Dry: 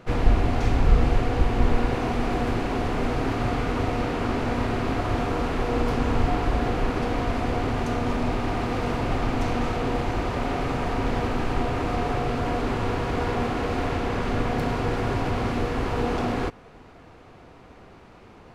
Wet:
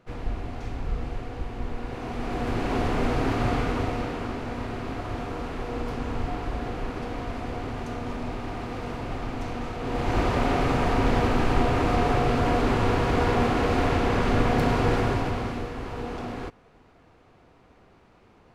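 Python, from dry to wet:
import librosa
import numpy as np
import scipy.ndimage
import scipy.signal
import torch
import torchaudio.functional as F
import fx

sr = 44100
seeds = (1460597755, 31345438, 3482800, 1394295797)

y = fx.gain(x, sr, db=fx.line((1.77, -11.5), (2.75, 0.5), (3.56, 0.5), (4.4, -7.0), (9.77, -7.0), (10.18, 3.0), (14.95, 3.0), (15.74, -8.0)))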